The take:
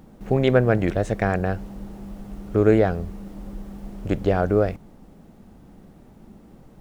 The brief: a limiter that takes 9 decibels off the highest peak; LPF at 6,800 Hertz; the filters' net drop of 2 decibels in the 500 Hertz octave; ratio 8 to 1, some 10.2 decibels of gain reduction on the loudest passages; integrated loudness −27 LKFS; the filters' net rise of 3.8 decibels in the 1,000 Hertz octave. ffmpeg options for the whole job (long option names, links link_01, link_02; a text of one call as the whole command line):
ffmpeg -i in.wav -af "lowpass=6800,equalizer=frequency=500:width_type=o:gain=-4.5,equalizer=frequency=1000:width_type=o:gain=8.5,acompressor=threshold=-23dB:ratio=8,volume=7dB,alimiter=limit=-14dB:level=0:latency=1" out.wav